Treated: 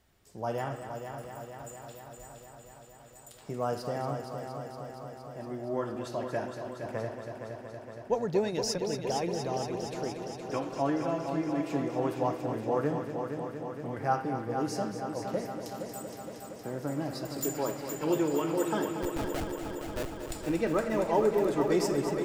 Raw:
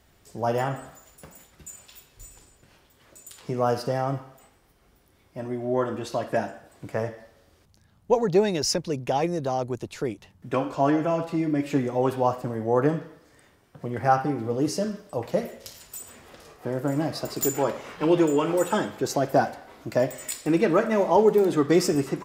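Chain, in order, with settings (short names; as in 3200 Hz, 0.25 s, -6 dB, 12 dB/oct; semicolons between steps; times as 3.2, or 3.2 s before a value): 18.99–20.32 Schmitt trigger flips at -18.5 dBFS; multi-head echo 0.233 s, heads first and second, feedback 74%, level -10 dB; gain -8 dB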